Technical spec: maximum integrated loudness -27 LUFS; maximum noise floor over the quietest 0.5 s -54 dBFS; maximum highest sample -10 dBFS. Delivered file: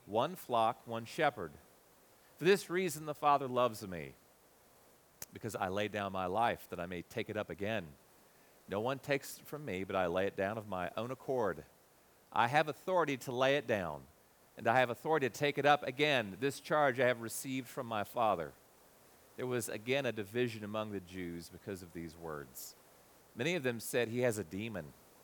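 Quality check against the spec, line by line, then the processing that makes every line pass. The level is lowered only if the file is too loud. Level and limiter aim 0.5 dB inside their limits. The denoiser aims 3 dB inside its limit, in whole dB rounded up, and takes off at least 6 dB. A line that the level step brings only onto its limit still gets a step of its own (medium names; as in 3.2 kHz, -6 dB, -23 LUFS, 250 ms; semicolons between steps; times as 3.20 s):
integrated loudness -35.5 LUFS: pass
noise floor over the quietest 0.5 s -66 dBFS: pass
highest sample -13.5 dBFS: pass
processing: none needed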